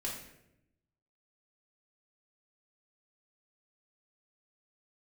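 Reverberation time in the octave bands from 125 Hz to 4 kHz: 1.3 s, 1.2 s, 0.95 s, 0.70 s, 0.75 s, 0.60 s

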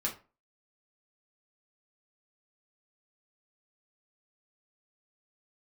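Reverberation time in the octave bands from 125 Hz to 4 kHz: 0.30 s, 0.35 s, 0.35 s, 0.35 s, 0.30 s, 0.20 s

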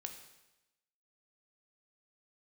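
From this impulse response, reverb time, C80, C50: 0.95 s, 10.0 dB, 8.0 dB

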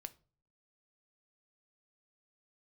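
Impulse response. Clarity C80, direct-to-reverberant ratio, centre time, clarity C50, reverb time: 26.0 dB, 11.0 dB, 3 ms, 20.5 dB, 0.40 s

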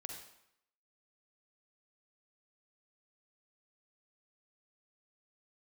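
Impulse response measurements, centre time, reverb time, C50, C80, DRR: 39 ms, 0.75 s, 3.0 dB, 6.0 dB, 2.0 dB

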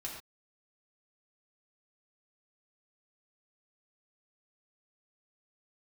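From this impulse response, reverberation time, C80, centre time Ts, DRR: no single decay rate, 6.0 dB, 38 ms, -4.0 dB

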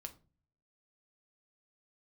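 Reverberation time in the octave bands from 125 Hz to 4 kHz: 0.80 s, 0.60 s, 0.40 s, 0.30 s, 0.25 s, 0.25 s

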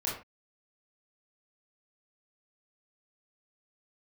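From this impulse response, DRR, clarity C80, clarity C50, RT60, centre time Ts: -6.0 dB, 10.0 dB, 4.5 dB, no single decay rate, 38 ms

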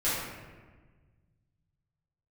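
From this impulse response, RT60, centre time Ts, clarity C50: 1.4 s, 90 ms, -1.0 dB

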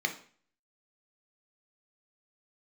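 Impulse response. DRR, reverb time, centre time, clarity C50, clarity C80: 4.0 dB, 0.45 s, 11 ms, 11.5 dB, 16.5 dB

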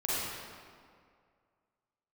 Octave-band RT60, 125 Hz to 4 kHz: 2.1 s, 2.1 s, 2.2 s, 2.1 s, 1.8 s, 1.3 s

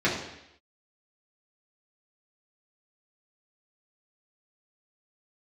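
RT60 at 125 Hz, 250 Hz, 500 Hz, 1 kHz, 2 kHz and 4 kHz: 0.75 s, 0.80 s, 0.80 s, 0.80 s, 0.90 s, 0.85 s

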